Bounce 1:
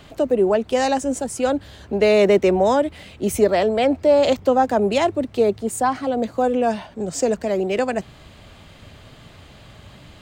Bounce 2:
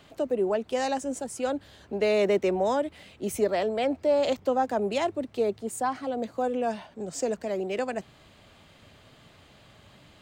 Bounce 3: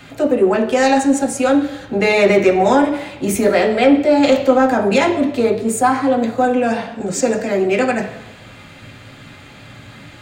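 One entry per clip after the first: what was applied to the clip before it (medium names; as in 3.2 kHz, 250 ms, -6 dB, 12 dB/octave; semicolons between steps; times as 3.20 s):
bass shelf 97 Hz -10 dB; trim -8 dB
reverberation RT60 1.0 s, pre-delay 3 ms, DRR 0.5 dB; in parallel at -4 dB: saturation -19.5 dBFS, distortion -14 dB; on the sum: trim +7 dB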